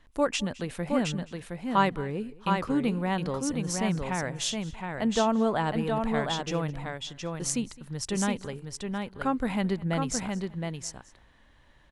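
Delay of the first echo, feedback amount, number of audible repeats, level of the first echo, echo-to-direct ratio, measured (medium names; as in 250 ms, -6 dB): 212 ms, no regular repeats, 3, -21.5 dB, -4.5 dB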